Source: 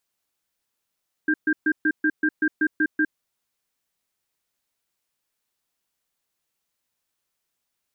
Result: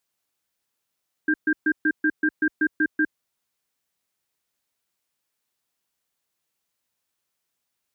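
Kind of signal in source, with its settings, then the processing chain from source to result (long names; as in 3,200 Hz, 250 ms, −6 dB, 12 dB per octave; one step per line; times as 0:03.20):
tone pair in a cadence 308 Hz, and 1,590 Hz, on 0.06 s, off 0.13 s, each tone −20 dBFS 1.82 s
high-pass filter 48 Hz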